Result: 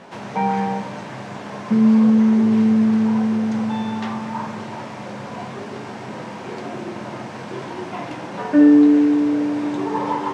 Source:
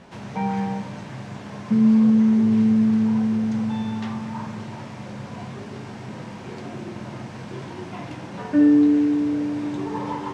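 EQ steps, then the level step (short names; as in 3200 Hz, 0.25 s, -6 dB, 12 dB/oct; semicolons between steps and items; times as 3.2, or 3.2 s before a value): HPF 760 Hz 6 dB/oct; tilt shelf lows +5 dB, about 1200 Hz; +8.5 dB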